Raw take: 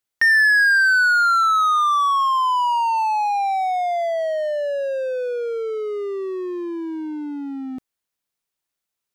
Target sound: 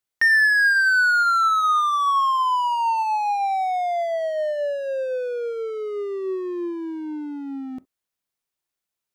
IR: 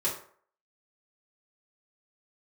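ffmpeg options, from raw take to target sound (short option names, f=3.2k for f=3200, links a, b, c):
-filter_complex "[0:a]asplit=2[a][b];[1:a]atrim=start_sample=2205,atrim=end_sample=3087,lowpass=2.5k[c];[b][c]afir=irnorm=-1:irlink=0,volume=-22dB[d];[a][d]amix=inputs=2:normalize=0,volume=-2.5dB"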